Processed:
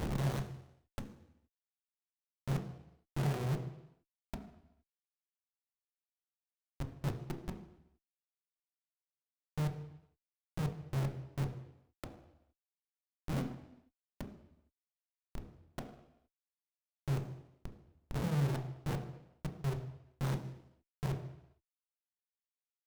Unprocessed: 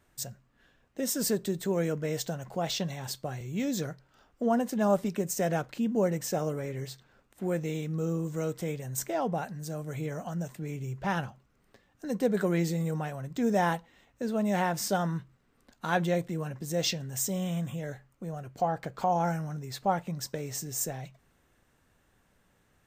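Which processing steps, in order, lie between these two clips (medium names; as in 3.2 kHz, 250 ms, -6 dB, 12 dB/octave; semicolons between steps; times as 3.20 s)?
spectrogram pixelated in time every 200 ms; in parallel at +1 dB: compression 8:1, threshold -42 dBFS, peak gain reduction 17 dB; on the sum: inverted gate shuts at -27 dBFS, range -31 dB; Schmitt trigger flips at -45.5 dBFS; on a send at -2.5 dB: reverberation RT60 0.85 s, pre-delay 4 ms; on the sum: sliding maximum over 17 samples; trim +10.5 dB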